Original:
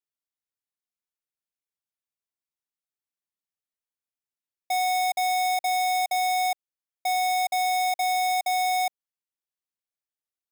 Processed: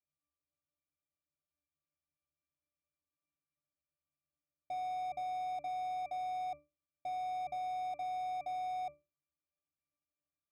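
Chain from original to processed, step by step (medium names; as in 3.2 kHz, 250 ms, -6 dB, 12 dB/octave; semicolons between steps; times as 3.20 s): square wave that keeps the level; hum notches 60/120/180/240/300/360 Hz; in parallel at +2.5 dB: saturation -37 dBFS, distortion -22 dB; on the sum: pitch-class resonator D, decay 0.26 s; trim +9 dB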